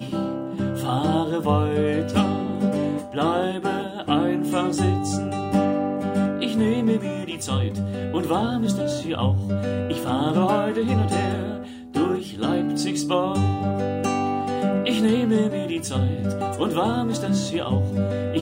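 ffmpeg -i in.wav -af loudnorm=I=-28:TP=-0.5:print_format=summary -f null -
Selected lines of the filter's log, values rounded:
Input Integrated:    -23.6 LUFS
Input True Peak:      -7.5 dBTP
Input LRA:             1.5 LU
Input Threshold:     -33.6 LUFS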